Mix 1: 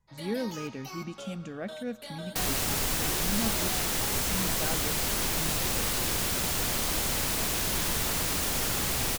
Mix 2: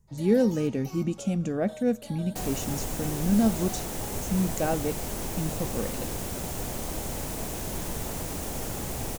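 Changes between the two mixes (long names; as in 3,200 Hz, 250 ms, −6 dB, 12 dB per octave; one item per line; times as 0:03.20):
speech +10.5 dB
second sound: add high-shelf EQ 3,700 Hz −7.5 dB
master: add flat-topped bell 2,300 Hz −8 dB 2.5 octaves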